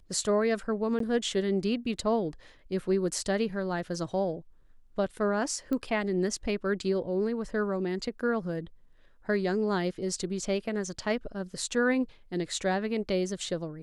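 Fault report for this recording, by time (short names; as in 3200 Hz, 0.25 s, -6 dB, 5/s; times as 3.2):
0.99–1 gap 13 ms
5.73 pop -21 dBFS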